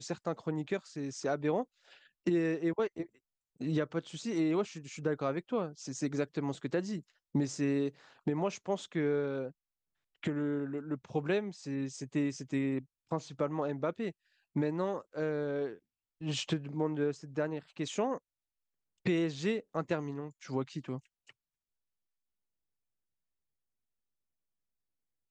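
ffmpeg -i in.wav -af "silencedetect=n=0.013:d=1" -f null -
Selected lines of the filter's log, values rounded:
silence_start: 20.98
silence_end: 25.31 | silence_duration: 4.33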